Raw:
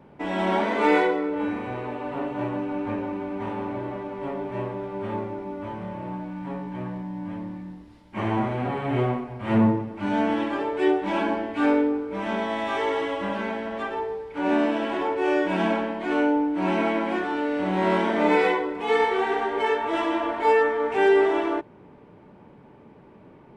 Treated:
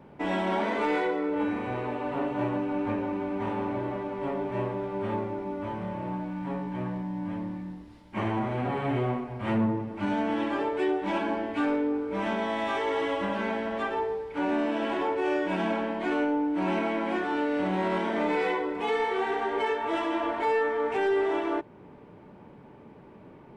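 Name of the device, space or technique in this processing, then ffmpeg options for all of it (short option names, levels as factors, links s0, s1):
soft clipper into limiter: -af "asoftclip=type=tanh:threshold=0.266,alimiter=limit=0.106:level=0:latency=1:release=313"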